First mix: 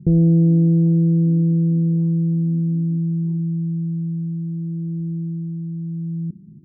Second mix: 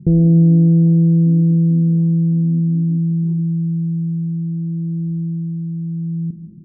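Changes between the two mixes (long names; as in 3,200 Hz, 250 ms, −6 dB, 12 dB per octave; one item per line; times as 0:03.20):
speech: add spectral tilt −3.5 dB per octave
reverb: on, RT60 1.3 s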